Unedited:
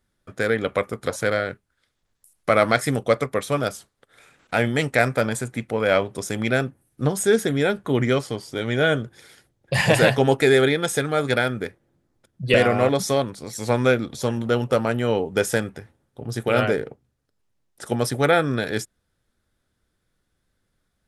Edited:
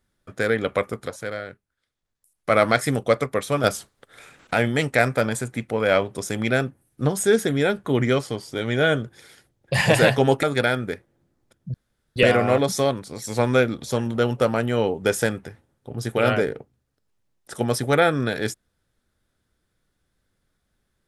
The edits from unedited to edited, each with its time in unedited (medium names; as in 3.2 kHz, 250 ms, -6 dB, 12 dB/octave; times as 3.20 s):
1.02–2.52 s: dip -8.5 dB, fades 0.49 s exponential
3.64–4.54 s: gain +6 dB
10.43–11.16 s: delete
12.47 s: insert room tone 0.42 s